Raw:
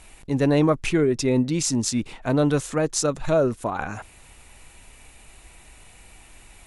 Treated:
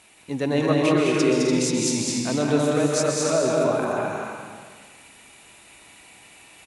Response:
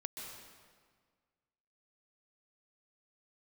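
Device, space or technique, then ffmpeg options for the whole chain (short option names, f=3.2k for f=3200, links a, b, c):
stadium PA: -filter_complex "[0:a]highpass=160,equalizer=f=3.3k:t=o:w=1.5:g=3,aecho=1:1:209.9|259.5|291.5:0.708|0.355|0.447[a];[1:a]atrim=start_sample=2205[b];[a][b]afir=irnorm=-1:irlink=0"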